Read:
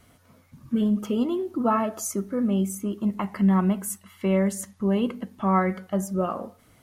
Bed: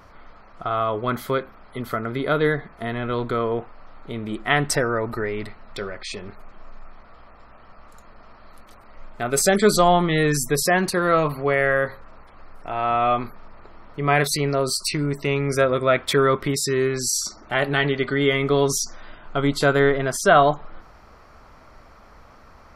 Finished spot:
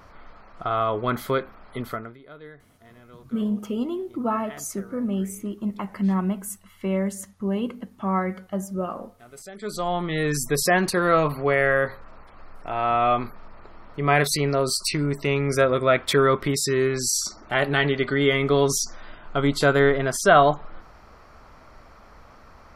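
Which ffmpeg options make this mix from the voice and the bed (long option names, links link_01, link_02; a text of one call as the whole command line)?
ffmpeg -i stem1.wav -i stem2.wav -filter_complex "[0:a]adelay=2600,volume=-2.5dB[link_01];[1:a]volume=22.5dB,afade=type=out:start_time=1.78:duration=0.39:silence=0.0707946,afade=type=in:start_time=9.54:duration=1.17:silence=0.0707946[link_02];[link_01][link_02]amix=inputs=2:normalize=0" out.wav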